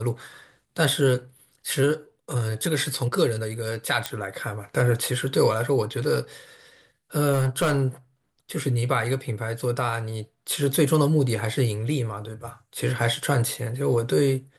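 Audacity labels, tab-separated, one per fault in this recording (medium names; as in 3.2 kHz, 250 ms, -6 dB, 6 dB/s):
4.060000	4.060000	pop -10 dBFS
7.320000	7.840000	clipped -18 dBFS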